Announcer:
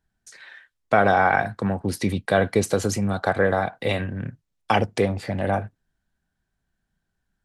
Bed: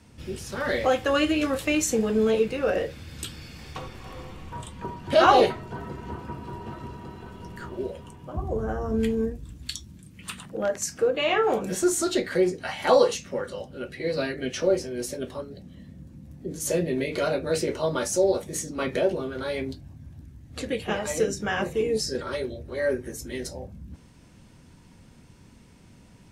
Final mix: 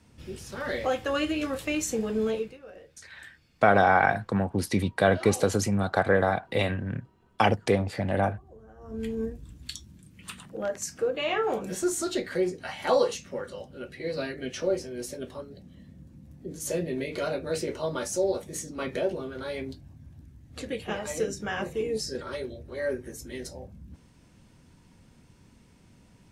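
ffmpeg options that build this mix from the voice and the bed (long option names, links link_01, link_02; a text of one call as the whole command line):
ffmpeg -i stem1.wav -i stem2.wav -filter_complex "[0:a]adelay=2700,volume=-2dB[link_01];[1:a]volume=13dB,afade=type=out:start_time=2.27:duration=0.32:silence=0.133352,afade=type=in:start_time=8.76:duration=0.48:silence=0.125893[link_02];[link_01][link_02]amix=inputs=2:normalize=0" out.wav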